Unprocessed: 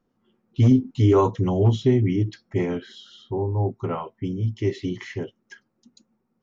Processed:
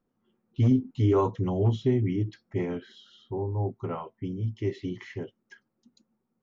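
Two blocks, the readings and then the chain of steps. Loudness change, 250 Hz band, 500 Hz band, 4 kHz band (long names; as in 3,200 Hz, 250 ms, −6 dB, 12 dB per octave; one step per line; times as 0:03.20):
−5.5 dB, −5.5 dB, −5.5 dB, −8.0 dB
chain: high-shelf EQ 5,500 Hz −9 dB
level −5.5 dB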